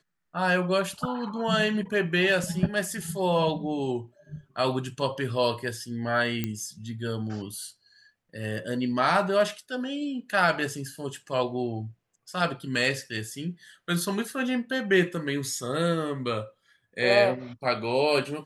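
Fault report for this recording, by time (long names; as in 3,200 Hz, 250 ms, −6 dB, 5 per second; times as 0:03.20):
0:06.44: click −14 dBFS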